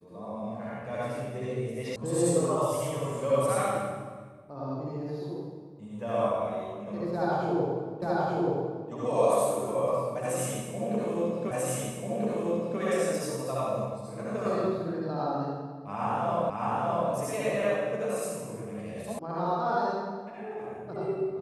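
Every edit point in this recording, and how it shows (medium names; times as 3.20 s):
1.96 s: sound stops dead
8.02 s: repeat of the last 0.88 s
11.51 s: repeat of the last 1.29 s
16.50 s: repeat of the last 0.61 s
19.19 s: sound stops dead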